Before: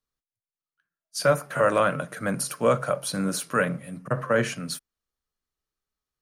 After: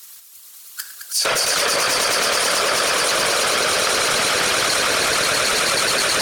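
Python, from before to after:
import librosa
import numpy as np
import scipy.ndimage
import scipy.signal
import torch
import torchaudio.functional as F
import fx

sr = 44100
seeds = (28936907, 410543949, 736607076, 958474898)

y = fx.halfwave_hold(x, sr)
y = fx.env_lowpass_down(y, sr, base_hz=2300.0, full_db=-17.0)
y = np.diff(y, prepend=0.0)
y = fx.echo_swell(y, sr, ms=107, loudest=8, wet_db=-3.5)
y = fx.whisperise(y, sr, seeds[0])
y = fx.env_flatten(y, sr, amount_pct=100)
y = y * 10.0 ** (8.5 / 20.0)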